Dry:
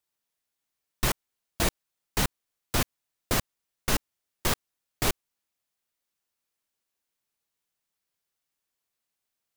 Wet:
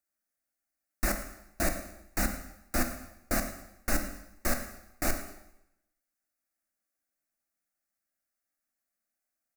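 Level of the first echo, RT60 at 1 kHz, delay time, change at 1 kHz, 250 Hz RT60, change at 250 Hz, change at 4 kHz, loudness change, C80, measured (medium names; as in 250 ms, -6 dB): -16.0 dB, 0.85 s, 110 ms, -3.5 dB, 0.80 s, -0.5 dB, -10.5 dB, -3.5 dB, 10.0 dB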